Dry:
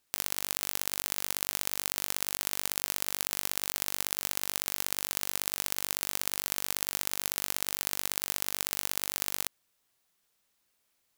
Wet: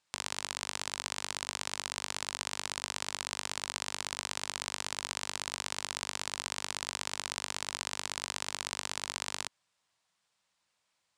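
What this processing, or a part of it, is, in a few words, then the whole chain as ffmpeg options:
car door speaker: -af "highpass=81,equalizer=f=260:t=q:w=4:g=-8,equalizer=f=400:t=q:w=4:g=-9,equalizer=f=980:t=q:w=4:g=4,equalizer=f=6200:t=q:w=4:g=-3,lowpass=f=8100:w=0.5412,lowpass=f=8100:w=1.3066"

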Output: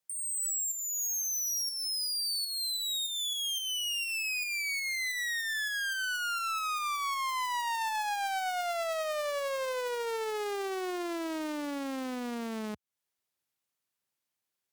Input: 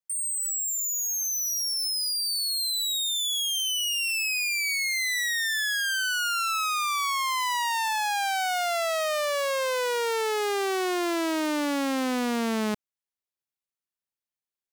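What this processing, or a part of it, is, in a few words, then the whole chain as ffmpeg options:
podcast mastering chain: -af "highpass=f=73:w=0.5412,highpass=f=73:w=1.3066,deesser=0.55,acompressor=threshold=0.0251:ratio=3,alimiter=level_in=2.99:limit=0.0631:level=0:latency=1:release=353,volume=0.335,volume=2.24" -ar 48000 -c:a libmp3lame -b:a 128k

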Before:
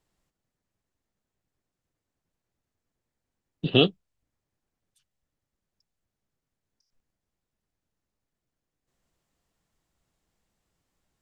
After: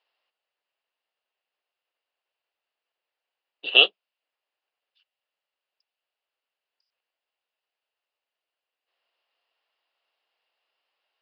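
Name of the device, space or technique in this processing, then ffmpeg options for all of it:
musical greeting card: -af "aresample=11025,aresample=44100,highpass=f=530:w=0.5412,highpass=f=530:w=1.3066,equalizer=f=2800:t=o:w=0.32:g=11,volume=1.19"

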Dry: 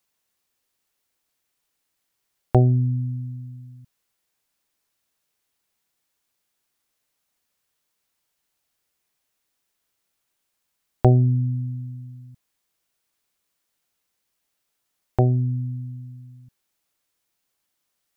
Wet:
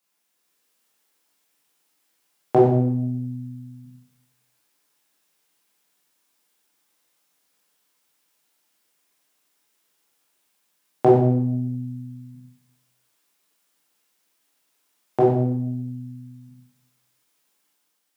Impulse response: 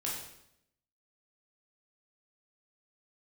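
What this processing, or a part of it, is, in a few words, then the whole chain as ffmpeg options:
far laptop microphone: -filter_complex "[1:a]atrim=start_sample=2205[s0];[0:a][s0]afir=irnorm=-1:irlink=0,highpass=f=170:w=0.5412,highpass=f=170:w=1.3066,dynaudnorm=f=130:g=7:m=1.58"

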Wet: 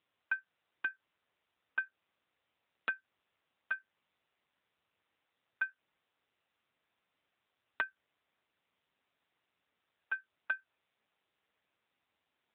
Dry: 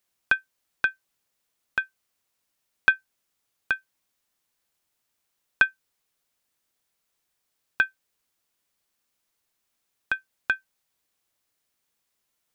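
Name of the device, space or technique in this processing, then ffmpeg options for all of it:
voicemail: -af "highpass=310,lowpass=2700,acompressor=threshold=0.0398:ratio=8,volume=1.26" -ar 8000 -c:a libopencore_amrnb -b:a 7950

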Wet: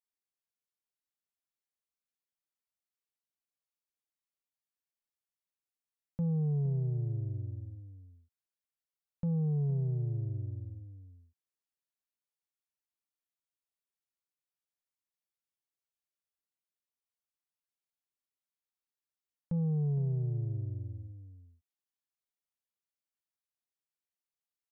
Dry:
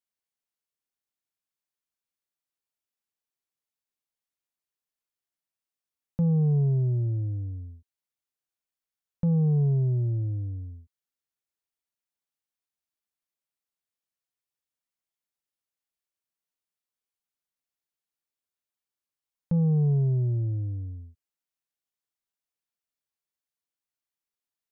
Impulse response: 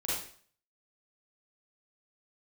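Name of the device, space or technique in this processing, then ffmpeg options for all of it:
ducked delay: -filter_complex "[0:a]asplit=3[s0][s1][s2];[s1]adelay=463,volume=0.355[s3];[s2]apad=whole_len=1110481[s4];[s3][s4]sidechaincompress=threshold=0.0562:ratio=8:attack=16:release=390[s5];[s0][s5]amix=inputs=2:normalize=0,volume=0.398"

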